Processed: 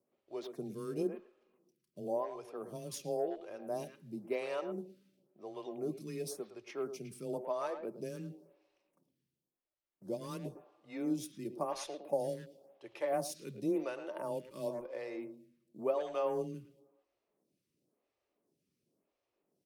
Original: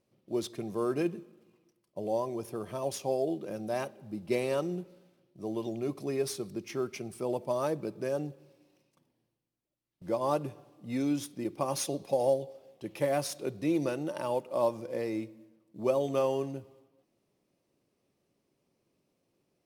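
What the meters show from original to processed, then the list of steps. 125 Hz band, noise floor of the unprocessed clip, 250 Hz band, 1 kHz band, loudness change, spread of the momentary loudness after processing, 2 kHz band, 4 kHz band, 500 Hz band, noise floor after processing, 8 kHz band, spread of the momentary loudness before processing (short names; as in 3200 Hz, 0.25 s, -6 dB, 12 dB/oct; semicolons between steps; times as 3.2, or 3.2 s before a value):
-8.5 dB, -79 dBFS, -7.0 dB, -6.5 dB, -6.5 dB, 13 LU, -6.5 dB, -8.0 dB, -6.5 dB, under -85 dBFS, -7.5 dB, 11 LU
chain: speakerphone echo 0.11 s, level -9 dB; frequency shift +16 Hz; photocell phaser 0.95 Hz; gain -4 dB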